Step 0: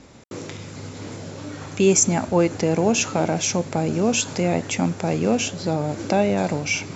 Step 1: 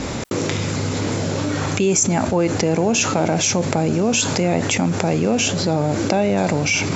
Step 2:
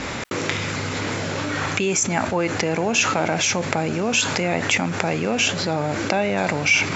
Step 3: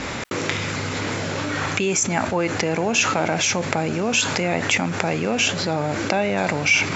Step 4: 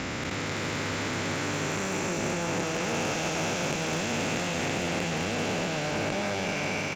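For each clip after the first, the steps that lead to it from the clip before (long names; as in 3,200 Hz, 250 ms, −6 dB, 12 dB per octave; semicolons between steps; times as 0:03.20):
envelope flattener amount 70%; level −2.5 dB
parametric band 1,900 Hz +11 dB 2.4 octaves; level −6.5 dB
no processing that can be heard
spectrum smeared in time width 994 ms; single-tap delay 206 ms −7.5 dB; asymmetric clip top −25 dBFS; level −2.5 dB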